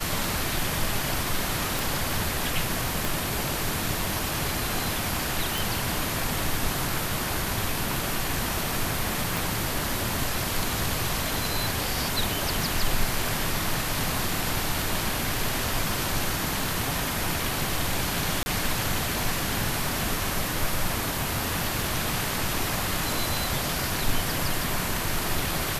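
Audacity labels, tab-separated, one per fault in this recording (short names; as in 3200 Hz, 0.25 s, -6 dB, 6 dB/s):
1.790000	1.790000	pop
3.050000	3.050000	pop
5.580000	5.580000	pop
9.370000	9.370000	pop
18.430000	18.460000	gap 30 ms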